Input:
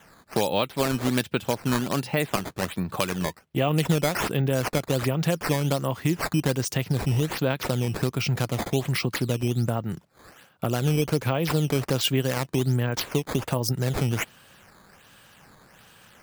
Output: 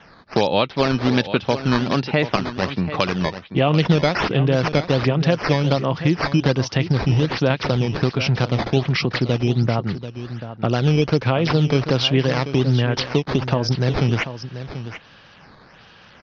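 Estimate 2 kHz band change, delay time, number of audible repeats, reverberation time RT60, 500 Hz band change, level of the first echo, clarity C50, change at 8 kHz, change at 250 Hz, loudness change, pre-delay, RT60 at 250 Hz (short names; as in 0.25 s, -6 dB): +6.5 dB, 0.737 s, 1, none, +6.5 dB, -12.0 dB, none, -6.0 dB, +6.0 dB, +6.0 dB, none, none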